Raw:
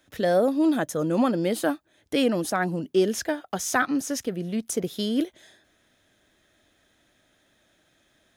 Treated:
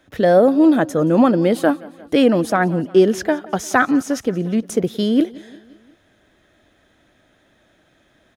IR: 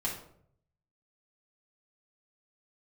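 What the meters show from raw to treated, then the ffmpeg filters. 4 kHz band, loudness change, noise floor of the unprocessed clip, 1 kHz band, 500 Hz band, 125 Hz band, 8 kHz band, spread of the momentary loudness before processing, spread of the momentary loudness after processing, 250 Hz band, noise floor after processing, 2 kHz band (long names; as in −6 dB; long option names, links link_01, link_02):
+3.0 dB, +8.5 dB, −66 dBFS, +8.0 dB, +9.0 dB, +9.0 dB, −0.5 dB, 8 LU, 8 LU, +9.0 dB, −59 dBFS, +7.0 dB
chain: -af "highshelf=frequency=3400:gain=-11.5,aecho=1:1:176|352|528|704:0.0794|0.0461|0.0267|0.0155,volume=9dB"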